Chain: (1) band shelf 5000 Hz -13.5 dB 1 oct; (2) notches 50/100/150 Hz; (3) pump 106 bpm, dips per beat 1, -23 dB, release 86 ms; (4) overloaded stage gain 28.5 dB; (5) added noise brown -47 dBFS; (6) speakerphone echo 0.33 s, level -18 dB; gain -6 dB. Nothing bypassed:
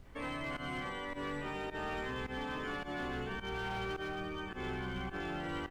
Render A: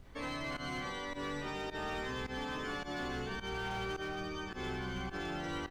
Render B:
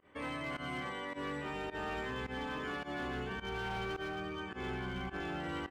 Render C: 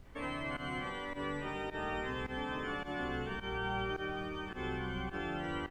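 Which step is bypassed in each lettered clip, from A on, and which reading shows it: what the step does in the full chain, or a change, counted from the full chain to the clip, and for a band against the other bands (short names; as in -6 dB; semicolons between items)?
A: 1, 8 kHz band +6.5 dB; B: 5, crest factor change -2.5 dB; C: 4, distortion -15 dB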